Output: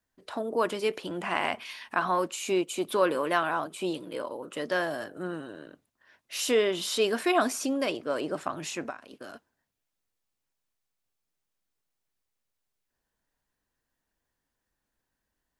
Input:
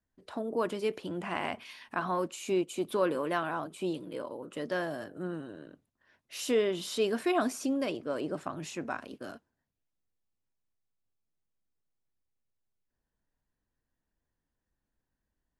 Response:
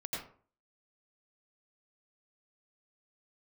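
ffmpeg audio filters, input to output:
-filter_complex "[0:a]lowshelf=f=370:g=-9.5,asplit=3[a][b][c];[a]afade=t=out:st=8.89:d=0.02[d];[b]acompressor=threshold=-47dB:ratio=4,afade=t=in:st=8.89:d=0.02,afade=t=out:st=9.33:d=0.02[e];[c]afade=t=in:st=9.33:d=0.02[f];[d][e][f]amix=inputs=3:normalize=0,volume=7dB"

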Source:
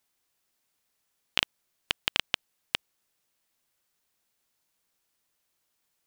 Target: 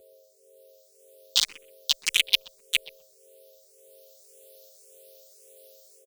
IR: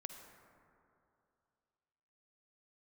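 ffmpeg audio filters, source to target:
-filter_complex "[0:a]equalizer=f=120:t=o:w=1.3:g=-6,aecho=1:1:6.5:0.65,alimiter=limit=-7dB:level=0:latency=1:release=17,dynaudnorm=f=540:g=3:m=11dB,aeval=exprs='val(0)+0.00708*sin(2*PI*530*n/s)':c=same,aexciter=amount=12.9:drive=1:freq=2.8k,asplit=4[a][b][c][d];[b]asetrate=33038,aresample=44100,atempo=1.33484,volume=-11dB[e];[c]asetrate=37084,aresample=44100,atempo=1.18921,volume=-6dB[f];[d]asetrate=52444,aresample=44100,atempo=0.840896,volume=-5dB[g];[a][e][f][g]amix=inputs=4:normalize=0,asplit=2[h][i];[i]adelay=126,lowpass=f=810:p=1,volume=-11.5dB,asplit=2[j][k];[k]adelay=126,lowpass=f=810:p=1,volume=0.22,asplit=2[l][m];[m]adelay=126,lowpass=f=810:p=1,volume=0.22[n];[j][l][n]amix=inputs=3:normalize=0[o];[h][o]amix=inputs=2:normalize=0,asplit=2[p][q];[q]afreqshift=1.8[r];[p][r]amix=inputs=2:normalize=1,volume=-11.5dB"

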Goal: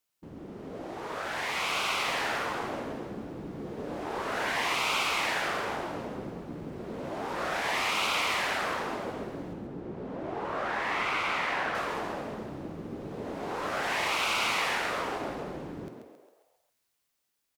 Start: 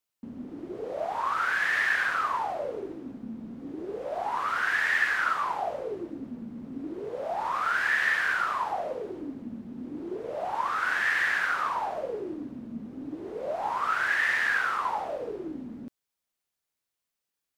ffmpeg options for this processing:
-filter_complex "[0:a]asettb=1/sr,asplit=3[a][b][c];[a]atrim=end=9.534[d];[b]atrim=start=9.53:end=11.75,asetpts=PTS-STARTPTS,afade=t=in:d=0.004:c=qsin,afade=t=out:st=2.216:d=0.004:c=qsin,lowpass=f=1.7k:p=1[e];[c]atrim=start=11.746[f];[d][e]acrossfade=d=0.004:c1=hsin:c2=qsin[g];[g][f]acrossfade=d=0.004:c1=qsin:c2=hsin,afftfilt=real='re*lt(hypot(re,im),0.0708)':imag='im*lt(hypot(re,im),0.0708)':win_size=1024:overlap=0.75,bandreject=f=123.8:t=h:w=4,bandreject=f=247.6:t=h:w=4,bandreject=f=371.4:t=h:w=4,bandreject=f=495.2:t=h:w=4,bandreject=f=619:t=h:w=4,bandreject=f=742.8:t=h:w=4,bandreject=f=866.6:t=h:w=4,bandreject=f=990.4:t=h:w=4,bandreject=f=1.1142k:t=h:w=4,bandreject=f=1.238k:t=h:w=4,bandreject=f=1.3618k:t=h:w=4,bandreject=f=1.4856k:t=h:w=4,bandreject=f=1.6094k:t=h:w=4,bandreject=f=1.7332k:t=h:w=4,bandreject=f=1.857k:t=h:w=4,bandreject=f=1.9808k:t=h:w=4,bandreject=f=2.1046k:t=h:w=4,bandreject=f=2.2284k:t=h:w=4,bandreject=f=2.3522k:t=h:w=4,bandreject=f=2.476k:t=h:w=4,bandreject=f=2.5998k:t=h:w=4,bandreject=f=2.7236k:t=h:w=4,bandreject=f=2.8474k:t=h:w=4,bandreject=f=2.9712k:t=h:w=4,bandreject=f=3.095k:t=h:w=4,bandreject=f=3.2188k:t=h:w=4,bandreject=f=3.3426k:t=h:w=4,bandreject=f=3.4664k:t=h:w=4,bandreject=f=3.5902k:t=h:w=4,asplit=7[h][i][j][k][l][m][n];[i]adelay=135,afreqshift=69,volume=-6.5dB[o];[j]adelay=270,afreqshift=138,volume=-12.5dB[p];[k]adelay=405,afreqshift=207,volume=-18.5dB[q];[l]adelay=540,afreqshift=276,volume=-24.6dB[r];[m]adelay=675,afreqshift=345,volume=-30.6dB[s];[n]adelay=810,afreqshift=414,volume=-36.6dB[t];[h][o][p][q][r][s][t]amix=inputs=7:normalize=0,dynaudnorm=f=200:g=17:m=4.5dB,volume=3.5dB"

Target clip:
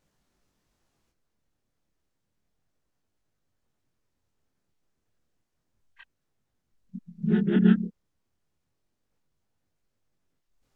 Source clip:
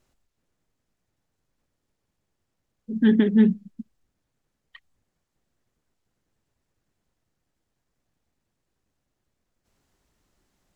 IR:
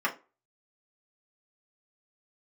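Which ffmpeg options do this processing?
-filter_complex "[0:a]areverse,asplit=2[a][b];[b]asetrate=37084,aresample=44100,atempo=1.18921,volume=0dB[c];[a][c]amix=inputs=2:normalize=0,flanger=delay=20:depth=7.6:speed=0.31,volume=-3dB"

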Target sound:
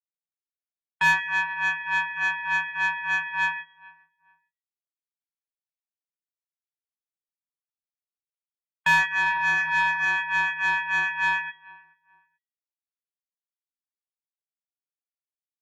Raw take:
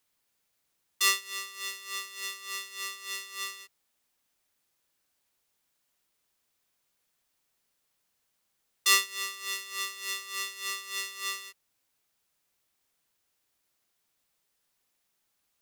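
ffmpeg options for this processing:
-filter_complex "[0:a]asettb=1/sr,asplit=3[a][b][c];[a]atrim=end=9.264[d];[b]atrim=start=9.26:end=10.05,asetpts=PTS-STARTPTS,afade=t=in:d=0.004:c=qsin,afade=t=out:st=0.786:d=0.004:c=qsin,aeval=exprs='val(0)+0.5*0.0119*sgn(val(0))':c=same[e];[c]atrim=start=10.046[f];[d][e]acrossfade=d=0.004:c1=hsin:c2=qsin[g];[g][f]acrossfade=d=0.004:c1=qsin:c2=hsin,highpass=f=180:t=q:w=0.5412,highpass=f=180:t=q:w=1.307,lowpass=f=3k:t=q:w=0.5176,lowpass=f=3k:t=q:w=0.7071,lowpass=f=3k:t=q:w=1.932,afreqshift=-230,afftfilt=real='re*gte(hypot(re,im),0.00501)':imag='im*gte(hypot(re,im),0.00501)':win_size=1024:overlap=0.75,agate=range=-23dB:threshold=-49dB:ratio=16:detection=peak,equalizer=f=1.4k:w=3.3:g=14,acontrast=42,bandreject=f=275.4:t=h:w=4,bandreject=f=550.8:t=h:w=4,bandreject=f=826.2:t=h:w=4,bandreject=f=1.1016k:t=h:w=4,bandreject=f=1.377k:t=h:w=4,bandreject=f=1.6524k:t=h:w=4,bandreject=f=1.9278k:t=h:w=4,bandreject=f=2.2032k:t=h:w=4,bandreject=f=2.4786k:t=h:w=4,bandreject=f=2.754k:t=h:w=4,bandreject=f=3.0294k:t=h:w=4,bandreject=f=3.3048k:t=h:w=4,bandreject=f=3.5802k:t=h:w=4,bandreject=f=3.8556k:t=h:w=4,bandreject=f=4.131k:t=h:w=4,bandreject=f=4.4064k:t=h:w=4,bandreject=f=4.6818k:t=h:w=4,bandreject=f=4.9572k:t=h:w=4,bandreject=f=5.2326k:t=h:w=4,bandreject=f=5.508k:t=h:w=4,bandreject=f=5.7834k:t=h:w=4,bandreject=f=6.0588k:t=h:w=4,bandreject=f=6.3342k:t=h:w=4,bandreject=f=6.6096k:t=h:w=4,bandreject=f=6.885k:t=h:w=4,bandreject=f=7.1604k:t=h:w=4,bandreject=f=7.4358k:t=h:w=4,bandreject=f=7.7112k:t=h:w=4,bandreject=f=7.9866k:t=h:w=4,acrossover=split=1000[h][i];[h]aeval=exprs='val(0)*(1-0.5/2+0.5/2*cos(2*PI*6.8*n/s))':c=same[j];[i]aeval=exprs='val(0)*(1-0.5/2-0.5/2*cos(2*PI*6.8*n/s))':c=same[k];[j][k]amix=inputs=2:normalize=0,asplit=2[l][m];[m]adelay=431,lowpass=f=1.6k:p=1,volume=-23.5dB,asplit=2[n][o];[o]adelay=431,lowpass=f=1.6k:p=1,volume=0.28[p];[l][n][p]amix=inputs=3:normalize=0,asplit=2[q][r];[r]highpass=f=720:p=1,volume=21dB,asoftclip=type=tanh:threshold=-9.5dB[s];[q][s]amix=inputs=2:normalize=0,lowpass=f=2.1k:p=1,volume=-6dB,volume=-1.5dB"

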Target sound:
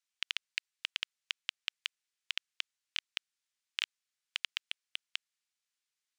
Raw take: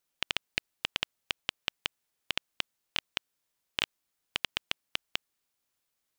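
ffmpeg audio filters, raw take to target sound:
-filter_complex "[0:a]asettb=1/sr,asplit=3[a][b][c];[a]atrim=end=4.574[d];[b]atrim=start=4.57:end=5.03,asetpts=PTS-STARTPTS,afade=t=in:d=0.004:c=qsin,afade=t=out:st=0.456:d=0.004:c=qsin,volume=15dB,asoftclip=hard,volume=-15dB[e];[c]atrim=start=5.026[f];[d][e]acrossfade=d=0.004:c1=hsin:c2=qsin[g];[g][f]acrossfade=d=0.004:c1=qsin:c2=hsin,asuperpass=centerf=3800:order=4:qfactor=0.54,volume=-3.5dB"

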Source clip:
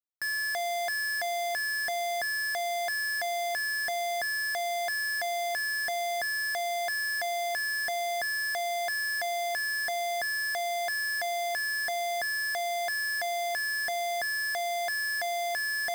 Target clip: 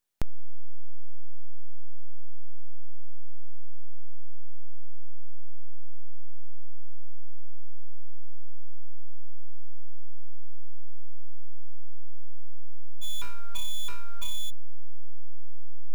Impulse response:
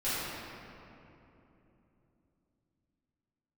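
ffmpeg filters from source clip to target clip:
-filter_complex "[0:a]asplit=3[a][b][c];[a]afade=t=out:st=13.01:d=0.02[d];[b]bandreject=f=187.4:t=h:w=4,bandreject=f=374.8:t=h:w=4,bandreject=f=562.2:t=h:w=4,bandreject=f=749.6:t=h:w=4,bandreject=f=937:t=h:w=4,bandreject=f=1.1244k:t=h:w=4,bandreject=f=1.3118k:t=h:w=4,bandreject=f=1.4992k:t=h:w=4,bandreject=f=1.6866k:t=h:w=4,bandreject=f=1.874k:t=h:w=4,afade=t=in:st=13.01:d=0.02,afade=t=out:st=14.49:d=0.02[e];[c]afade=t=in:st=14.49:d=0.02[f];[d][e][f]amix=inputs=3:normalize=0,aeval=exprs='abs(val(0))':c=same,volume=14dB"

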